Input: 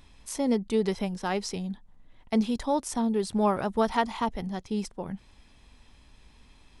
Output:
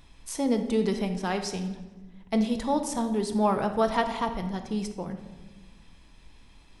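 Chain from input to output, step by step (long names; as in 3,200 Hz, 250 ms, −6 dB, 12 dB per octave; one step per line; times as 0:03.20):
rectangular room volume 810 cubic metres, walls mixed, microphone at 0.71 metres
feedback echo with a swinging delay time 86 ms, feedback 59%, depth 66 cents, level −22 dB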